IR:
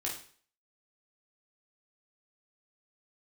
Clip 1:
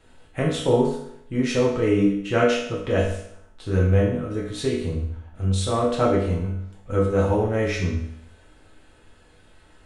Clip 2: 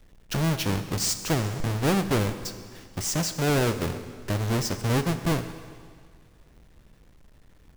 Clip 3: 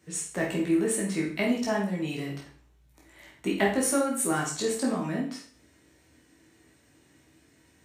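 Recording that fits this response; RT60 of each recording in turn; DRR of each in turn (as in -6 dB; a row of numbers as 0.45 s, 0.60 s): 3; 0.70 s, 1.9 s, 0.45 s; -5.0 dB, 9.5 dB, -3.5 dB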